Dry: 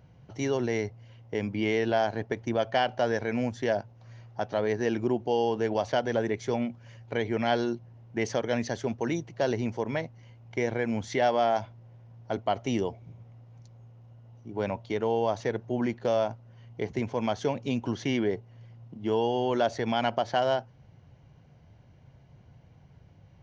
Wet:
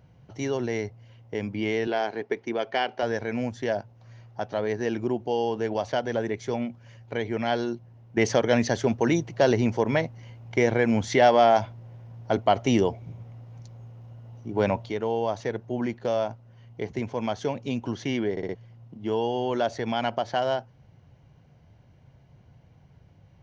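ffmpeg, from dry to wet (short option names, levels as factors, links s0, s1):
-filter_complex "[0:a]asettb=1/sr,asplit=3[s0][s1][s2];[s0]atrim=end=1.874[s3];[s1]atrim=start=1.87:end=3.03,asetpts=PTS-STARTPTS,afade=t=in:d=0.004:c=qsin,afade=t=out:st=1.156:d=0.004:c=qsin,highpass=240,equalizer=f=410:t=q:w=4:g=7,equalizer=f=590:t=q:w=4:g=-5,equalizer=f=2200:t=q:w=4:g=5,lowpass=f=6200:w=0.5412,lowpass=f=6200:w=1.3066[s4];[s2]atrim=start=3.026[s5];[s3][s4]acrossfade=d=0.004:c1=hsin:c2=qsin[s6];[s6][s5]acrossfade=d=0.004:c1=qsin:c2=hsin,asettb=1/sr,asplit=3[s7][s8][s9];[s7]atrim=end=8.174[s10];[s8]atrim=start=8.17:end=14.9,asetpts=PTS-STARTPTS,afade=t=in:d=0.004:c=qsin,afade=t=out:st=6.726:d=0.004:c=qsin,acontrast=78[s11];[s9]atrim=start=14.896[s12];[s10][s11]acrossfade=d=0.004:c1=hsin:c2=qsin[s13];[s13][s12]acrossfade=d=0.004:c1=qsin:c2=hsin,asplit=5[s14][s15][s16][s17][s18];[s14]atrim=end=18.372[s19];[s15]atrim=start=18.308:end=18.372[s20];[s16]atrim=start=18.308:end=18.372[s21];[s17]atrim=start=18.308:end=18.372[s22];[s18]atrim=start=18.548[s23];[s19][s20]acrossfade=d=0.004:c1=hsin:c2=hsin[s24];[s24][s21]acrossfade=d=0.004:c1=hsin:c2=hsin[s25];[s25][s22]acrossfade=d=0.004:c1=hsin:c2=hsin[s26];[s26][s23]acrossfade=d=0.004:c1=hsin:c2=hsin"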